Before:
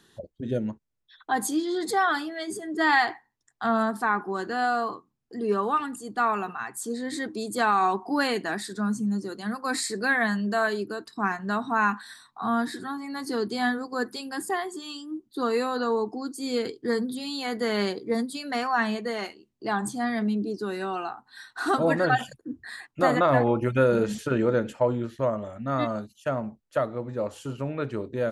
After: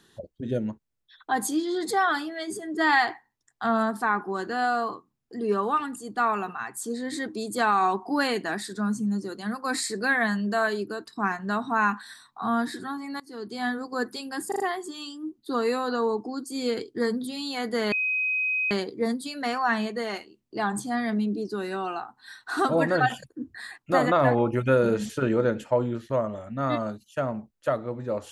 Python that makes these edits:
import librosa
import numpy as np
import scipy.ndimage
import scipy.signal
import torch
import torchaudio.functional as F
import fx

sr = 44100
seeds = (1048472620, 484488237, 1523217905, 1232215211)

y = fx.edit(x, sr, fx.fade_in_from(start_s=13.2, length_s=0.68, floor_db=-23.5),
    fx.stutter(start_s=14.48, slice_s=0.04, count=4),
    fx.insert_tone(at_s=17.8, length_s=0.79, hz=2520.0, db=-23.0), tone=tone)